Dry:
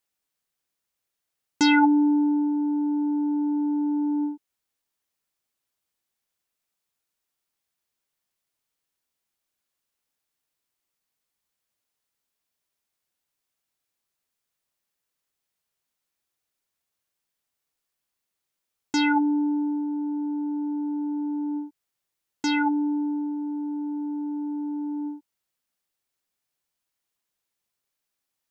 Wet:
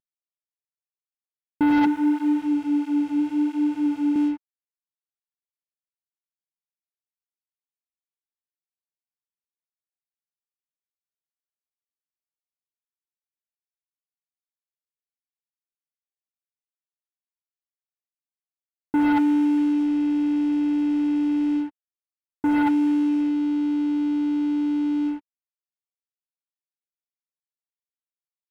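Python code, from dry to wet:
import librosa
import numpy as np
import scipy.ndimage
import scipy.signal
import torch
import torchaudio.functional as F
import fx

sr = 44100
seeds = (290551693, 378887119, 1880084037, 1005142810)

y = fx.cvsd(x, sr, bps=16000)
y = fx.lowpass(y, sr, hz=1100.0, slope=6)
y = fx.leveller(y, sr, passes=3)
y = fx.flanger_cancel(y, sr, hz=1.5, depth_ms=5.0, at=(1.86, 4.16))
y = y * librosa.db_to_amplitude(-3.0)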